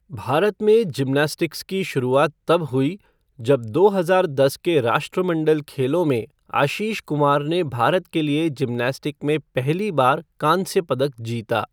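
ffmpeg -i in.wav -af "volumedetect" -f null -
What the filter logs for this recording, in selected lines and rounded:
mean_volume: -20.6 dB
max_volume: -3.4 dB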